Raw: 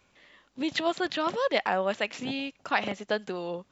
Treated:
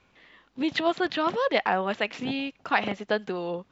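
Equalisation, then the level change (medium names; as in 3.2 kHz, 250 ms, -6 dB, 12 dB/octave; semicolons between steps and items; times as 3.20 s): distance through air 120 m; band-stop 580 Hz, Q 12; +3.5 dB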